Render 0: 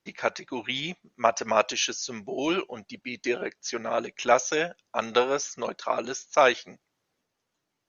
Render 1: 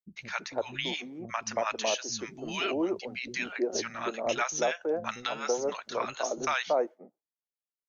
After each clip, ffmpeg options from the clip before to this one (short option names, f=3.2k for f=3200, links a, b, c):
-filter_complex "[0:a]agate=range=-33dB:threshold=-51dB:ratio=3:detection=peak,acrossover=split=220|900[a][b][c];[c]adelay=100[d];[b]adelay=330[e];[a][e][d]amix=inputs=3:normalize=0,alimiter=limit=-17.5dB:level=0:latency=1:release=267"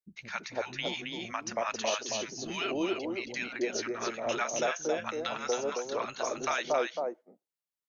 -af "aecho=1:1:271:0.596,volume=-2.5dB"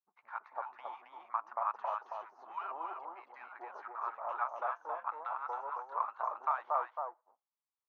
-af "aeval=exprs='if(lt(val(0),0),0.447*val(0),val(0))':c=same,asuperpass=centerf=1000:order=4:qfactor=2.4,volume=6.5dB"